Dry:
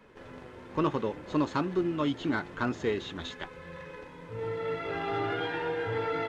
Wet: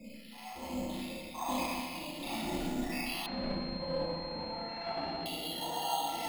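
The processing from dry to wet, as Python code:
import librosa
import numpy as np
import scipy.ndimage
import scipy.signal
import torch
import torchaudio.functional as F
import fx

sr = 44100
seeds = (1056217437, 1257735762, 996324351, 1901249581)

y = fx.spec_dropout(x, sr, seeds[0], share_pct=67)
y = fx.peak_eq(y, sr, hz=1100.0, db=-12.0, octaves=0.78)
y = fx.over_compress(y, sr, threshold_db=-45.0, ratio=-1.0)
y = fx.transient(y, sr, attack_db=-10, sustain_db=2)
y = fx.fixed_phaser(y, sr, hz=420.0, stages=6)
y = fx.rev_schroeder(y, sr, rt60_s=2.2, comb_ms=28, drr_db=-10.0)
y = np.repeat(scipy.signal.resample_poly(y, 1, 6), 6)[:len(y)]
y = fx.pwm(y, sr, carrier_hz=4200.0, at=(3.26, 5.26))
y = F.gain(torch.from_numpy(y), 5.0).numpy()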